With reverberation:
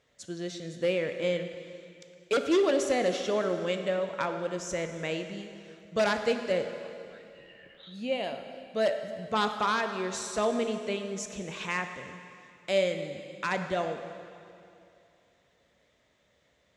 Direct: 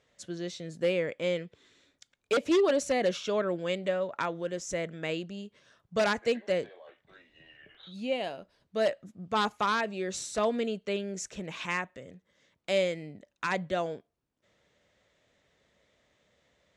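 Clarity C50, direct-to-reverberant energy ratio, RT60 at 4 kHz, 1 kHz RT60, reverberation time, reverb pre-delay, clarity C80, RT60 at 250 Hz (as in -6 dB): 7.5 dB, 6.5 dB, 2.4 s, 2.6 s, 2.6 s, 7 ms, 8.0 dB, 2.6 s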